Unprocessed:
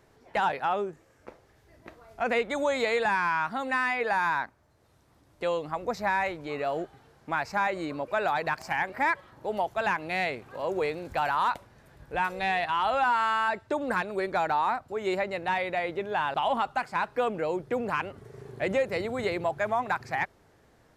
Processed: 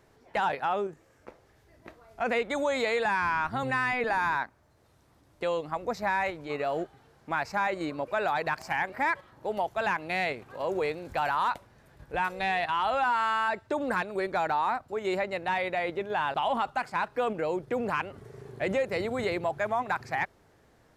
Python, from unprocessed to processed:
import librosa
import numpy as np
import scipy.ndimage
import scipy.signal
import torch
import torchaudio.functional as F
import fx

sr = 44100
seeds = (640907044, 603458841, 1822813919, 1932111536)

p1 = fx.octave_divider(x, sr, octaves=1, level_db=-1.0, at=(3.21, 4.37))
p2 = fx.level_steps(p1, sr, step_db=17)
p3 = p1 + (p2 * librosa.db_to_amplitude(0.0))
y = p3 * librosa.db_to_amplitude(-4.0)